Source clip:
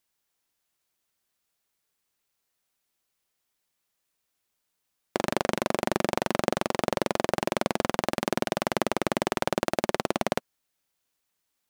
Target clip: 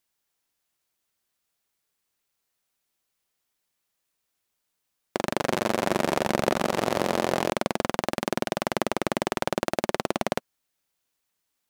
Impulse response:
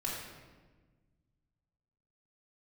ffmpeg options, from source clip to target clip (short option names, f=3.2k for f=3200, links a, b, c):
-filter_complex "[0:a]asettb=1/sr,asplit=3[a][b][c];[a]atrim=end=5.214[d];[b]atrim=start=5.21:end=7.5,asetpts=PTS-STARTPTS,afade=t=in:d=0.004:c=qsin,afade=t=out:st=2.286:d=0.004:c=qsin,aecho=1:1:160|304|433.6|550.2|655.2:0.631|0.398|0.251|0.158|0.1,atrim=end_sample=100989[e];[c]atrim=start=7.496[f];[d][e]acrossfade=d=0.004:c1=hsin:c2=qsin[g];[g][f]acrossfade=d=0.004:c1=qsin:c2=hsin"